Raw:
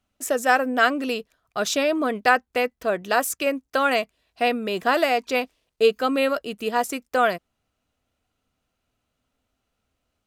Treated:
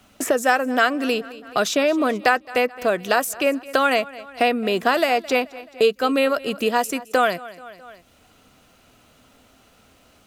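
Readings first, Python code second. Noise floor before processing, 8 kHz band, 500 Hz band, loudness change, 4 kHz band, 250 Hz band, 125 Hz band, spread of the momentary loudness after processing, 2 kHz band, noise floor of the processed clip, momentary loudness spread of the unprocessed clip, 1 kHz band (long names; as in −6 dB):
−78 dBFS, +1.5 dB, +2.5 dB, +2.0 dB, +2.5 dB, +3.0 dB, can't be measured, 5 LU, +1.5 dB, −56 dBFS, 7 LU, +1.5 dB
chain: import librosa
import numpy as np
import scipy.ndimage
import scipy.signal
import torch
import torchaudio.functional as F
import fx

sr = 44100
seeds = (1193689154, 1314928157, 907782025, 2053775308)

p1 = x + fx.echo_feedback(x, sr, ms=215, feedback_pct=40, wet_db=-22.0, dry=0)
p2 = fx.band_squash(p1, sr, depth_pct=70)
y = F.gain(torch.from_numpy(p2), 2.0).numpy()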